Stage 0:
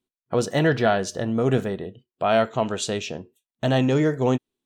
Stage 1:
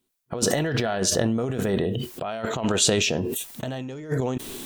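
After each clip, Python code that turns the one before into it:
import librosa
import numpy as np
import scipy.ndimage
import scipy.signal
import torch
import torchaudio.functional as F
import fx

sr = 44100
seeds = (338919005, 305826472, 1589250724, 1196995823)

y = fx.over_compress(x, sr, threshold_db=-27.0, ratio=-0.5)
y = fx.high_shelf(y, sr, hz=7200.0, db=8.5)
y = fx.sustainer(y, sr, db_per_s=21.0)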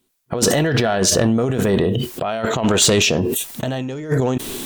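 y = fx.fold_sine(x, sr, drive_db=6, ceiling_db=-6.5)
y = F.gain(torch.from_numpy(y), -2.0).numpy()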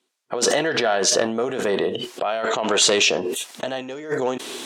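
y = fx.bandpass_edges(x, sr, low_hz=410.0, high_hz=7000.0)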